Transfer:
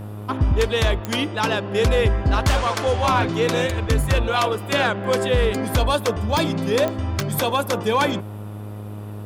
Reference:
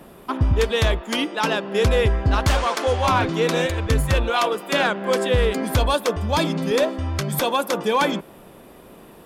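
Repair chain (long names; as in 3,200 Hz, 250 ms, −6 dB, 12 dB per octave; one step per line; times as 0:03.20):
click removal
hum removal 104.2 Hz, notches 14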